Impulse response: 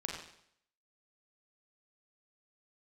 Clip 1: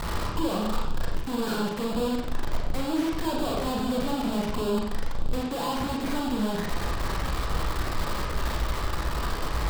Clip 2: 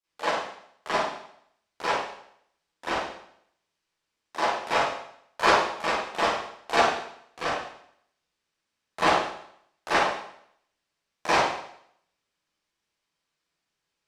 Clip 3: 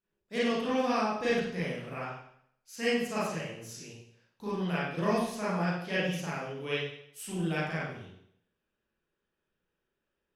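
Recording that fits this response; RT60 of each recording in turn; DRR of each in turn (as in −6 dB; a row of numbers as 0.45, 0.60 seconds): 1; 0.65, 0.65, 0.65 seconds; −1.5, −16.5, −10.5 decibels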